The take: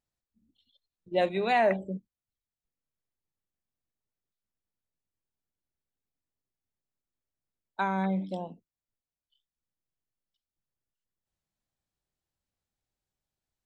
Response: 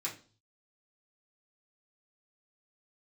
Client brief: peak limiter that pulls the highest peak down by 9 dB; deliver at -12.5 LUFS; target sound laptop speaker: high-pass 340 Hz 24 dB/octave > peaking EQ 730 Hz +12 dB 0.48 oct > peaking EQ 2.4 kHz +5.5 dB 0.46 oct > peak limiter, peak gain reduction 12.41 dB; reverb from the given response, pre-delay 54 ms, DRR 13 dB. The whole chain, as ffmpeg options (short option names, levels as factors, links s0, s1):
-filter_complex "[0:a]alimiter=limit=0.0708:level=0:latency=1,asplit=2[s0][s1];[1:a]atrim=start_sample=2205,adelay=54[s2];[s1][s2]afir=irnorm=-1:irlink=0,volume=0.178[s3];[s0][s3]amix=inputs=2:normalize=0,highpass=f=340:w=0.5412,highpass=f=340:w=1.3066,equalizer=f=730:t=o:w=0.48:g=12,equalizer=f=2400:t=o:w=0.46:g=5.5,volume=15,alimiter=limit=0.708:level=0:latency=1"